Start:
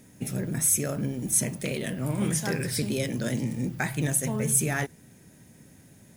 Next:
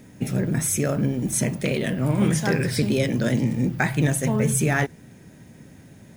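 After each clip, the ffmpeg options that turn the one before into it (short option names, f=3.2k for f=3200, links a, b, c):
-af "equalizer=f=12k:t=o:w=1.6:g=-11,volume=7dB"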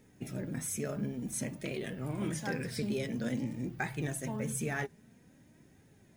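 -af "flanger=delay=2.2:depth=2.8:regen=49:speed=0.51:shape=triangular,volume=-9dB"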